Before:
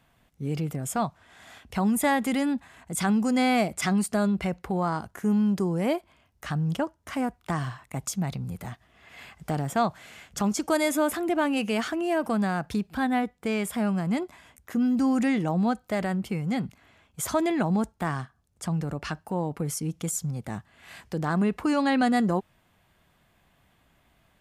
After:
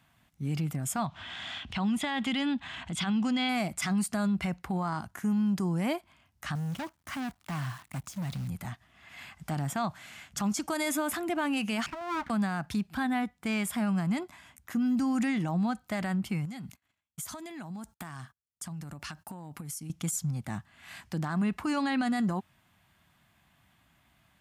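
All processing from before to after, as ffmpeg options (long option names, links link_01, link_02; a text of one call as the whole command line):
ffmpeg -i in.wav -filter_complex "[0:a]asettb=1/sr,asplit=3[link_01][link_02][link_03];[link_01]atrim=end=1.064[link_04];[link_02]atrim=start=1.06:end=3.49,asetpts=PTS-STARTPTS,afade=type=in:duration=0.004:curve=qsin,afade=type=out:start_time=2.426:duration=0.004:curve=qsin,lowpass=4900,equalizer=frequency=3200:width_type=o:width=0.57:gain=11,acompressor=mode=upward:threshold=-29dB:ratio=2.5:attack=3.2:release=140:knee=2.83:detection=peak[link_05];[link_03]atrim=start=3.486[link_06];[link_04][link_05]acrossfade=duration=0.004:curve1=hsin:curve2=qsin[link_07];[link_07][link_06]acrossfade=duration=0.004:curve1=qsin:curve2=hsin,asettb=1/sr,asplit=3[link_08][link_09][link_10];[link_08]atrim=end=6.554[link_11];[link_09]atrim=start=6.55:end=8.48,asetpts=PTS-STARTPTS,afade=type=in:duration=0.004:curve=qsin,afade=type=out:start_time=1.926:duration=0.004:curve=qsin,deesser=0.95,asoftclip=type=hard:threshold=-30dB,acrusher=bits=9:dc=4:mix=0:aa=0.000001[link_12];[link_10]atrim=start=8.476[link_13];[link_11][link_12]acrossfade=duration=0.004:curve1=hsin:curve2=qsin[link_14];[link_14][link_13]acrossfade=duration=0.004:curve1=qsin:curve2=hsin,asettb=1/sr,asplit=3[link_15][link_16][link_17];[link_15]atrim=end=11.864[link_18];[link_16]atrim=start=11.86:end=12.3,asetpts=PTS-STARTPTS,afade=type=in:duration=0.004:curve=qsin,afade=type=out:start_time=0.436:duration=0.004:curve=qsin,asuperpass=centerf=650:order=20:qfactor=0.6,aeval=exprs='abs(val(0))':channel_layout=same[link_19];[link_17]atrim=start=12.296[link_20];[link_18][link_19]acrossfade=duration=0.004:curve1=hsin:curve2=qsin[link_21];[link_21][link_20]acrossfade=duration=0.004:curve1=qsin:curve2=hsin,asettb=1/sr,asplit=3[link_22][link_23][link_24];[link_22]atrim=end=16.454[link_25];[link_23]atrim=start=16.45:end=19.9,asetpts=PTS-STARTPTS,afade=type=in:duration=0.004:curve=qsin,afade=type=out:start_time=3.446:duration=0.004:curve=qsin,agate=range=-32dB:threshold=-56dB:ratio=16:release=100:detection=peak,highshelf=frequency=5400:gain=11,acompressor=threshold=-35dB:ratio=12:attack=3.2:release=140:knee=1:detection=peak[link_26];[link_24]atrim=start=19.896[link_27];[link_25][link_26]acrossfade=duration=0.004:curve1=hsin:curve2=qsin[link_28];[link_28][link_27]acrossfade=duration=0.004:curve1=qsin:curve2=hsin,highpass=66,equalizer=frequency=460:width_type=o:width=0.78:gain=-12.5,alimiter=limit=-22.5dB:level=0:latency=1:release=37" out.wav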